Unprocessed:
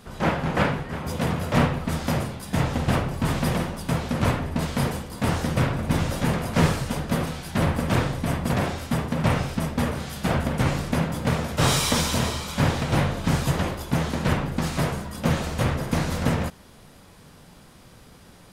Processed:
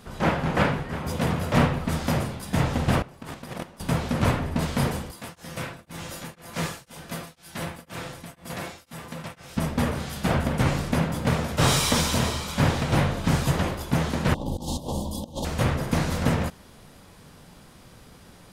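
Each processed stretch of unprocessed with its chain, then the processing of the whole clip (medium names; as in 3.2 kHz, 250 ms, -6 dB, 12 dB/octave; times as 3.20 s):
3.02–3.80 s: gate -23 dBFS, range -19 dB + bass shelf 140 Hz -10.5 dB + compressor with a negative ratio -36 dBFS
5.11–9.57 s: tilt EQ +2 dB/octave + feedback comb 170 Hz, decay 0.27 s, mix 70% + tremolo of two beating tones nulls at 2 Hz
14.34–15.45 s: elliptic band-stop 960–3300 Hz + comb 3.6 ms, depth 41% + compressor with a negative ratio -30 dBFS, ratio -0.5
whole clip: none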